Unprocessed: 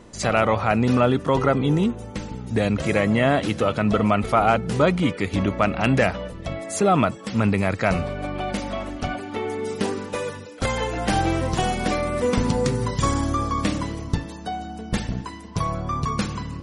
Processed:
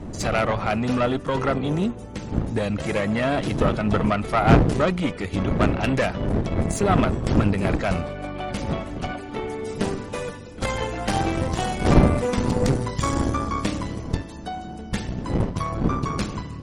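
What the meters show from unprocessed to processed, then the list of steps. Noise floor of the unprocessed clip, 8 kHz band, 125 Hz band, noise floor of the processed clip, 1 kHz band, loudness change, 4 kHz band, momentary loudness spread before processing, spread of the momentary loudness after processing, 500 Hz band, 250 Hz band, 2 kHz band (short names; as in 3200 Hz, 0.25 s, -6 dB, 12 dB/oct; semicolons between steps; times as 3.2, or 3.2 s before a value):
-37 dBFS, -2.0 dB, +1.0 dB, -36 dBFS, -2.0 dB, -0.5 dB, -1.5 dB, 10 LU, 11 LU, -1.5 dB, -0.5 dB, -2.0 dB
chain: wind noise 240 Hz -24 dBFS; added harmonics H 8 -20 dB, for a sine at 1 dBFS; gain -2.5 dB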